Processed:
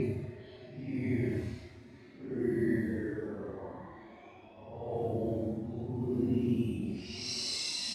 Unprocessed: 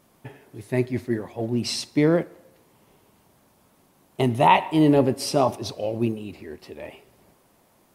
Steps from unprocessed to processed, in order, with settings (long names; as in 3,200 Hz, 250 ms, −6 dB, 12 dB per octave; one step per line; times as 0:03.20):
on a send: single-tap delay 133 ms −23 dB
on the sum: brickwall limiter −11.5 dBFS, peak gain reduction 8 dB
extreme stretch with random phases 8.5×, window 0.05 s, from 0:00.81
low-pass that shuts in the quiet parts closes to 2,800 Hz, open at −20 dBFS
level −8 dB